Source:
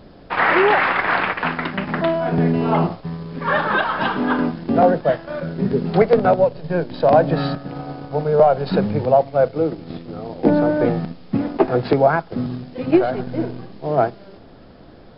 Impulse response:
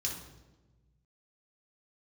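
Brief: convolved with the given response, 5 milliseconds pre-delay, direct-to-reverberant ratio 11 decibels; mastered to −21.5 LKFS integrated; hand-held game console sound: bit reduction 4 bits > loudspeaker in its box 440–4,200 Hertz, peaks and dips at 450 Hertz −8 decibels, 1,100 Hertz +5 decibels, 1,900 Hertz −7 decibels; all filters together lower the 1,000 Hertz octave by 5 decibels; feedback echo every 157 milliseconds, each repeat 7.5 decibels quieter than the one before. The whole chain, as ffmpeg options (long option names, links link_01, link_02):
-filter_complex "[0:a]equalizer=frequency=1000:width_type=o:gain=-8,aecho=1:1:157|314|471|628|785:0.422|0.177|0.0744|0.0312|0.0131,asplit=2[link_01][link_02];[1:a]atrim=start_sample=2205,adelay=5[link_03];[link_02][link_03]afir=irnorm=-1:irlink=0,volume=-13dB[link_04];[link_01][link_04]amix=inputs=2:normalize=0,acrusher=bits=3:mix=0:aa=0.000001,highpass=440,equalizer=frequency=450:width_type=q:width=4:gain=-8,equalizer=frequency=1100:width_type=q:width=4:gain=5,equalizer=frequency=1900:width_type=q:width=4:gain=-7,lowpass=frequency=4200:width=0.5412,lowpass=frequency=4200:width=1.3066,volume=2dB"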